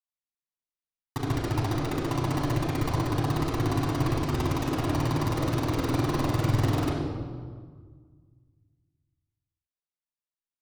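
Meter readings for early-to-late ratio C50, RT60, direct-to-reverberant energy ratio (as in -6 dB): 1.0 dB, 1.7 s, -4.0 dB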